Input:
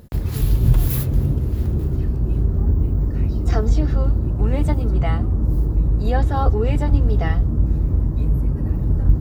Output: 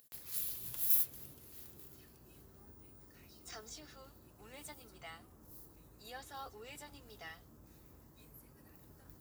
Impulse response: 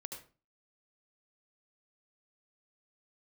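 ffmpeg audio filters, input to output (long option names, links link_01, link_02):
-af "aderivative,volume=-5.5dB"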